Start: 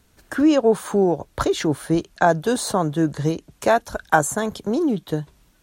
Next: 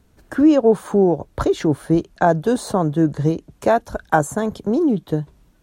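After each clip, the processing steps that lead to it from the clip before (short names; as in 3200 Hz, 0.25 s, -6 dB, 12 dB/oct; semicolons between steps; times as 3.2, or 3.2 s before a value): tilt shelf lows +5 dB, about 1100 Hz; gain -1 dB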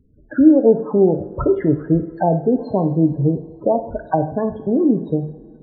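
treble ducked by the level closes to 650 Hz, closed at -13 dBFS; loudest bins only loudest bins 16; two-slope reverb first 0.53 s, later 2.6 s, from -16 dB, DRR 7 dB; gain +1 dB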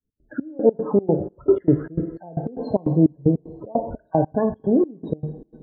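opening faded in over 0.81 s; step gate "x.xx..x.x" 152 bpm -24 dB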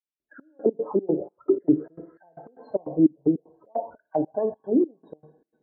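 auto-wah 300–2500 Hz, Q 2.7, down, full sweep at -13.5 dBFS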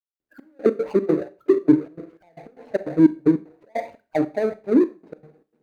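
median filter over 41 samples; Schroeder reverb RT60 0.31 s, combs from 29 ms, DRR 14.5 dB; gain +4.5 dB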